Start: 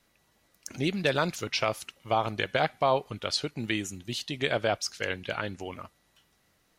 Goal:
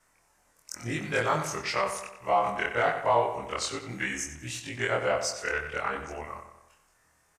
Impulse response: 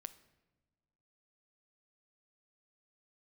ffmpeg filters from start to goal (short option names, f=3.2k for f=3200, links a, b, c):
-filter_complex "[0:a]afftfilt=real='re':imag='-im':win_size=2048:overlap=0.75,equalizer=f=250:t=o:w=1:g=-5,equalizer=f=1k:t=o:w=1:g=6,equalizer=f=2k:t=o:w=1:g=6,equalizer=f=4k:t=o:w=1:g=-10,equalizer=f=8k:t=o:w=1:g=11,asplit=2[a][b];[b]asoftclip=type=tanh:threshold=-25.5dB,volume=-10dB[c];[a][c]amix=inputs=2:normalize=0,asplit=2[d][e];[e]adelay=85,lowpass=f=4.7k:p=1,volume=-8.5dB,asplit=2[f][g];[g]adelay=85,lowpass=f=4.7k:p=1,volume=0.52,asplit=2[h][i];[i]adelay=85,lowpass=f=4.7k:p=1,volume=0.52,asplit=2[j][k];[k]adelay=85,lowpass=f=4.7k:p=1,volume=0.52,asplit=2[l][m];[m]adelay=85,lowpass=f=4.7k:p=1,volume=0.52,asplit=2[n][o];[o]adelay=85,lowpass=f=4.7k:p=1,volume=0.52[p];[d][f][h][j][l][n][p]amix=inputs=7:normalize=0,asetrate=40517,aresample=44100"